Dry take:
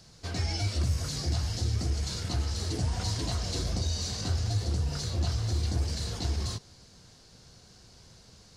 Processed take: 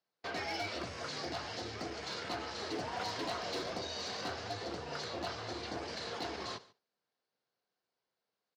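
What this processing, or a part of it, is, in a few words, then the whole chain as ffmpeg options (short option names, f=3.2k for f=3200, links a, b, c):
walkie-talkie: -af "highpass=450,lowpass=2.7k,asoftclip=type=hard:threshold=-35.5dB,agate=range=-30dB:threshold=-53dB:ratio=16:detection=peak,aecho=1:1:143:0.0841,volume=4dB"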